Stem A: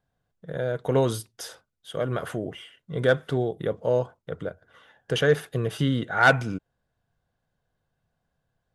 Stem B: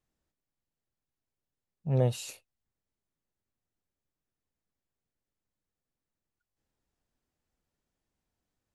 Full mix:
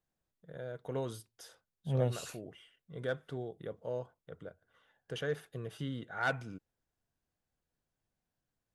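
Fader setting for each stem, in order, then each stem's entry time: -15.0 dB, -5.0 dB; 0.00 s, 0.00 s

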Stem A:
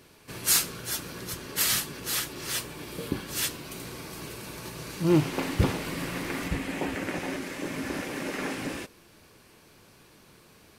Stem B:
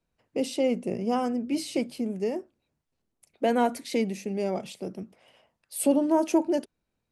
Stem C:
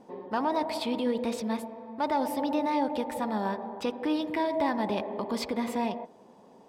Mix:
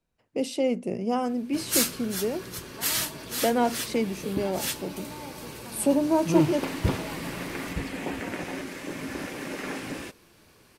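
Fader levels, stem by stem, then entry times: -1.5 dB, 0.0 dB, -15.0 dB; 1.25 s, 0.00 s, 2.45 s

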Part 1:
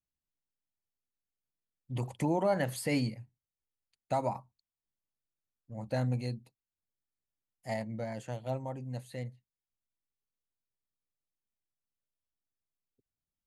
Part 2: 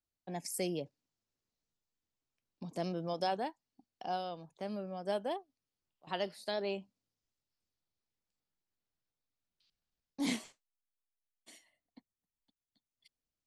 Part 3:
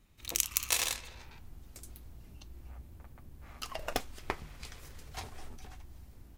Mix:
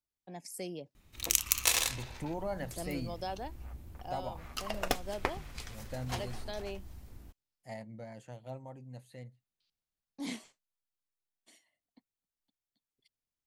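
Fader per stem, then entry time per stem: -8.5 dB, -5.0 dB, +2.5 dB; 0.00 s, 0.00 s, 0.95 s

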